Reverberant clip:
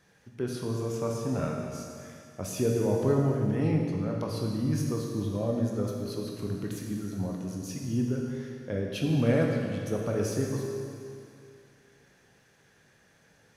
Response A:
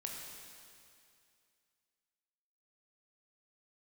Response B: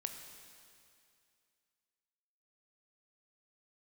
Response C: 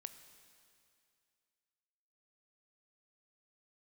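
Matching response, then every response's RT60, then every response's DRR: A; 2.4 s, 2.4 s, 2.4 s; -0.5 dB, 5.0 dB, 10.0 dB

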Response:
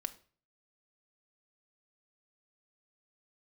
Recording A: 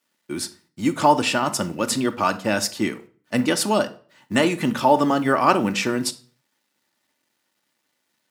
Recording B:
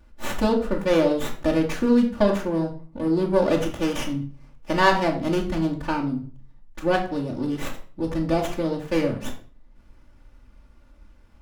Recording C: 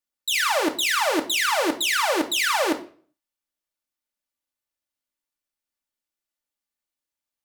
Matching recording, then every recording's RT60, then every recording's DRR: A; 0.40 s, 0.40 s, 0.40 s; 7.5 dB, -5.0 dB, 2.5 dB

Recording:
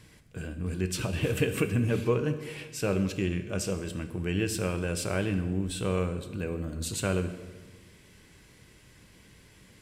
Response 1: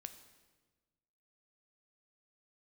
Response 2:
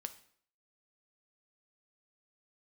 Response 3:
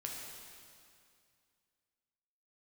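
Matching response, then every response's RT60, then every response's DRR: 1; 1.3 s, 0.60 s, 2.3 s; 8.5 dB, 9.0 dB, -1.5 dB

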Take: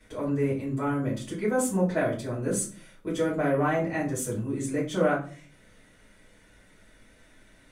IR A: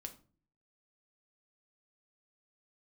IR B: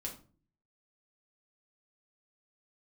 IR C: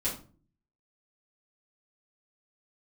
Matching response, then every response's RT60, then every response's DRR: C; 0.40 s, 0.40 s, 0.40 s; 4.5 dB, -2.0 dB, -10.0 dB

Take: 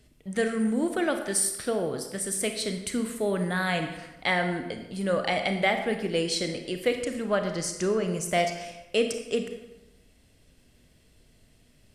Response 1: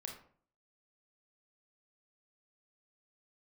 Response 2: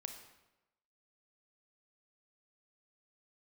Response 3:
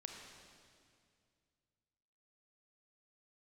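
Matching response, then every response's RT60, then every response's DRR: 2; 0.50 s, 1.0 s, 2.2 s; 1.0 dB, 5.5 dB, 2.0 dB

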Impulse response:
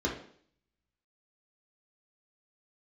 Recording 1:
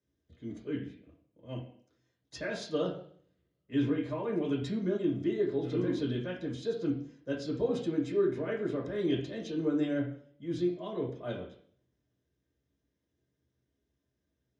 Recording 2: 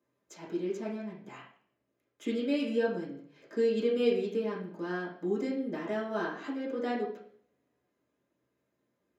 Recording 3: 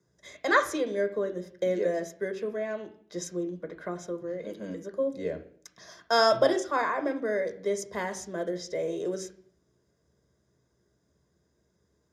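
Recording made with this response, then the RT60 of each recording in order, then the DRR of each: 1; 0.55 s, 0.55 s, 0.55 s; -3.0 dB, -8.5 dB, 6.5 dB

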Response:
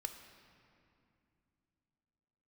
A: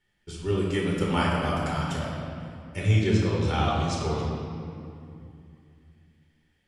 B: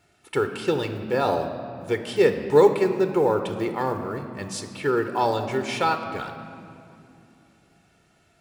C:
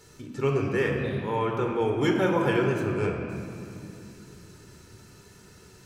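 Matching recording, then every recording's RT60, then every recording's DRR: B; 2.5 s, 2.7 s, 2.5 s; -4.5 dB, 7.0 dB, 1.0 dB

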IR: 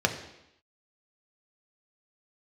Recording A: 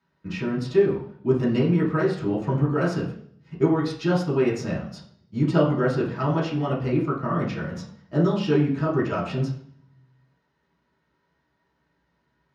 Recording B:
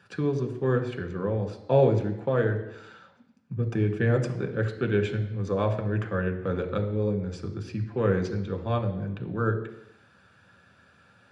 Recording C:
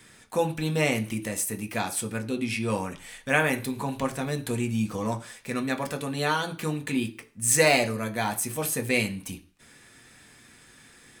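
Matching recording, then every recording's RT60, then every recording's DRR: B; 0.60 s, 0.85 s, 0.40 s; -8.0 dB, 3.5 dB, 4.5 dB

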